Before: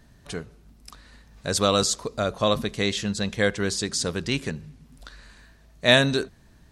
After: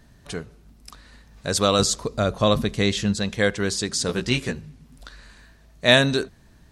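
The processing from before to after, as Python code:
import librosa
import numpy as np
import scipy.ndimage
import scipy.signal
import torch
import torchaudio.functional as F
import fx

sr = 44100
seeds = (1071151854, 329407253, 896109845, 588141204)

y = fx.low_shelf(x, sr, hz=230.0, db=6.5, at=(1.79, 3.15))
y = fx.doubler(y, sr, ms=16.0, db=-2.5, at=(4.07, 4.6))
y = y * librosa.db_to_amplitude(1.5)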